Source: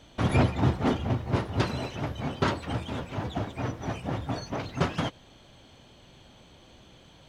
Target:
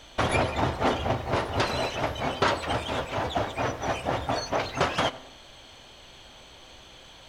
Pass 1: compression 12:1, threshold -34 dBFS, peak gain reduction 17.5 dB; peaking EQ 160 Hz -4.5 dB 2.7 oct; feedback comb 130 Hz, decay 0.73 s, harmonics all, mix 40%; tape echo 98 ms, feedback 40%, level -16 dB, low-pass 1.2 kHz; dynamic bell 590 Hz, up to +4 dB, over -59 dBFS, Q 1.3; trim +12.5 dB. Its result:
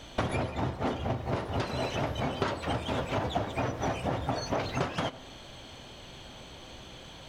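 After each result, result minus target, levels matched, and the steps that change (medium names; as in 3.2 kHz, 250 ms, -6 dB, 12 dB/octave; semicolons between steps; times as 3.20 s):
compression: peak gain reduction +10.5 dB; 125 Hz band +4.0 dB
change: compression 12:1, threshold -22.5 dBFS, peak gain reduction 7 dB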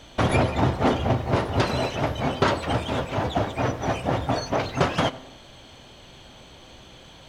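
125 Hz band +4.0 dB
change: peaking EQ 160 Hz -13 dB 2.7 oct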